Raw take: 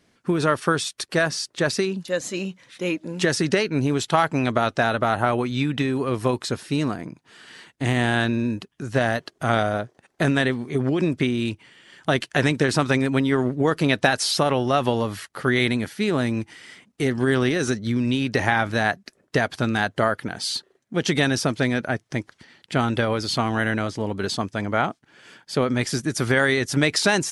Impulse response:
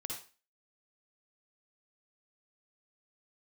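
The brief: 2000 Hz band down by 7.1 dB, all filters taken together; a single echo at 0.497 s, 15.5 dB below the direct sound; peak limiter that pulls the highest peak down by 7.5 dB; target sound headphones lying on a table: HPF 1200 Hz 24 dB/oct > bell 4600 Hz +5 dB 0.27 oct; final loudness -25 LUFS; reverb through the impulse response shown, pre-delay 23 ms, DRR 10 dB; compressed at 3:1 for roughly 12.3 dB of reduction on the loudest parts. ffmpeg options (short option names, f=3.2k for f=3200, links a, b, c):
-filter_complex "[0:a]equalizer=f=2k:t=o:g=-9,acompressor=threshold=-34dB:ratio=3,alimiter=level_in=1dB:limit=-24dB:level=0:latency=1,volume=-1dB,aecho=1:1:497:0.168,asplit=2[a][b];[1:a]atrim=start_sample=2205,adelay=23[c];[b][c]afir=irnorm=-1:irlink=0,volume=-9dB[d];[a][d]amix=inputs=2:normalize=0,highpass=f=1.2k:w=0.5412,highpass=f=1.2k:w=1.3066,equalizer=f=4.6k:t=o:w=0.27:g=5,volume=15.5dB"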